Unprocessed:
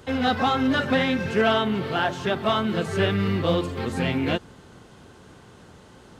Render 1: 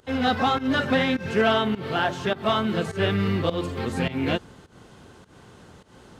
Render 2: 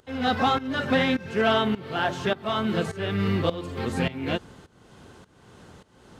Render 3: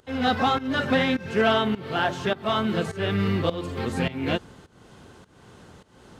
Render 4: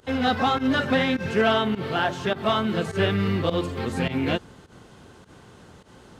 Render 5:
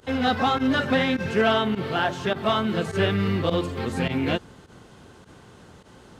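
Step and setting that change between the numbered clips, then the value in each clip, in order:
fake sidechain pumping, release: 188, 508, 346, 104, 63 milliseconds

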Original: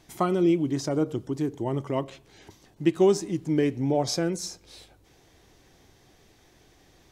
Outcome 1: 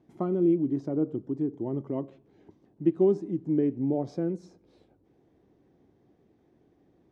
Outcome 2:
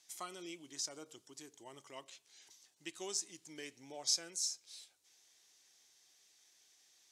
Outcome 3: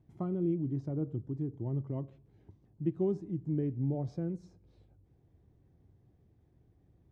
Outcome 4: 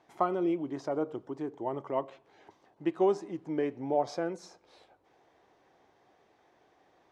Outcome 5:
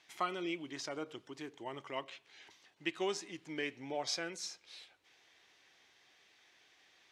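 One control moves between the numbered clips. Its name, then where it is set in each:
resonant band-pass, frequency: 260, 7,200, 100, 820, 2,500 Hertz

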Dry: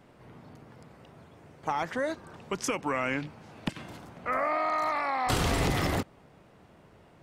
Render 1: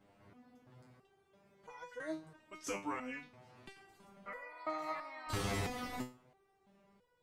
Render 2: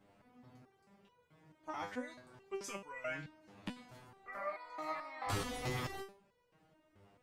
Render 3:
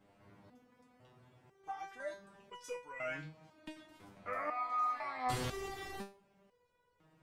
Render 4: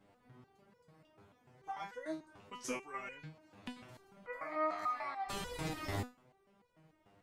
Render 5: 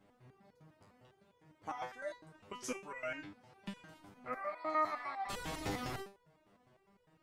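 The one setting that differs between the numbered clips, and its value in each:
step-sequenced resonator, speed: 3, 4.6, 2, 6.8, 9.9 Hertz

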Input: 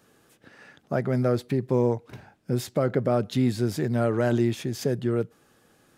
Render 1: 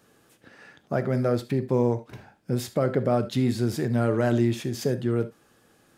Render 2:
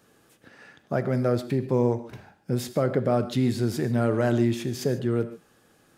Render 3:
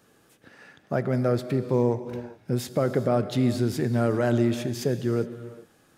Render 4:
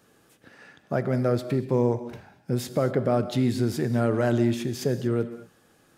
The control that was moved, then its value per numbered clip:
reverb whose tail is shaped and stops, gate: 100, 170, 440, 260 milliseconds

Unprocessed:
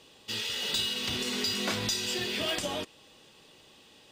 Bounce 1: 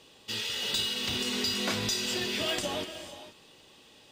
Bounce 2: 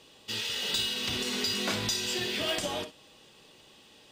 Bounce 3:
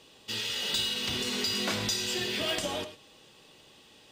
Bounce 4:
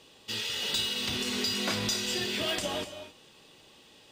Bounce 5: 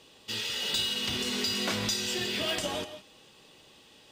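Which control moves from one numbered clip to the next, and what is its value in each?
reverb whose tail is shaped and stops, gate: 510, 80, 130, 290, 190 milliseconds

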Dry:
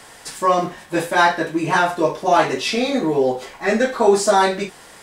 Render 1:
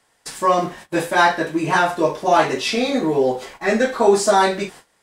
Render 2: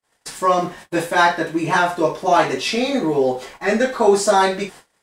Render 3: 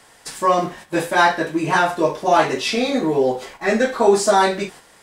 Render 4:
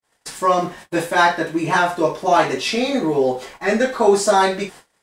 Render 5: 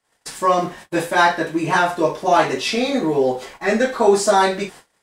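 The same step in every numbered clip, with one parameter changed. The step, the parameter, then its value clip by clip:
noise gate, range: −20, −46, −7, −59, −33 decibels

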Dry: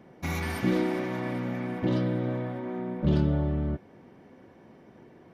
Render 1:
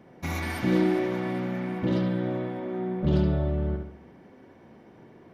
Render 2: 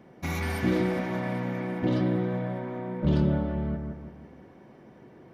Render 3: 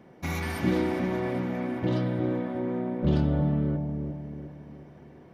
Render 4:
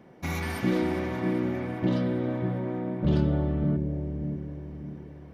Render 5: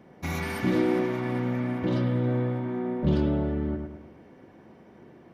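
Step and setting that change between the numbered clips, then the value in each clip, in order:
bucket-brigade delay, delay time: 70, 168, 360, 592, 105 milliseconds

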